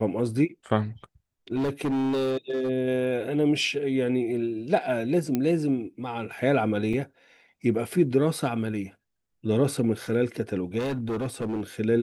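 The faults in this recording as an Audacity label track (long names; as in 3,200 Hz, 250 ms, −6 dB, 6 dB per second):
1.560000	2.700000	clipping −23 dBFS
5.350000	5.350000	click −13 dBFS
6.930000	6.930000	drop-out 4.7 ms
10.780000	11.610000	clipping −25.5 dBFS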